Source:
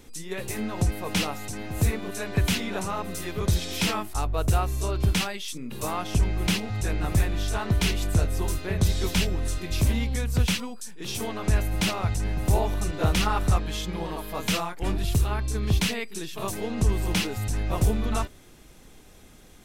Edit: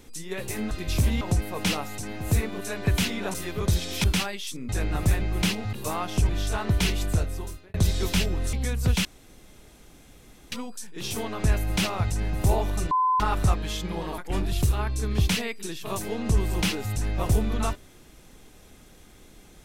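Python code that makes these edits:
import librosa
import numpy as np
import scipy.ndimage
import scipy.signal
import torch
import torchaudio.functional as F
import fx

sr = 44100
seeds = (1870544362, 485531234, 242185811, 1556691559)

y = fx.edit(x, sr, fx.cut(start_s=2.84, length_s=0.3),
    fx.cut(start_s=3.84, length_s=1.21),
    fx.swap(start_s=5.7, length_s=0.56, other_s=6.78, other_length_s=0.52),
    fx.fade_out_span(start_s=8.03, length_s=0.72),
    fx.move(start_s=9.54, length_s=0.5, to_s=0.71),
    fx.insert_room_tone(at_s=10.56, length_s=1.47),
    fx.bleep(start_s=12.95, length_s=0.29, hz=1020.0, db=-19.0),
    fx.cut(start_s=14.22, length_s=0.48), tone=tone)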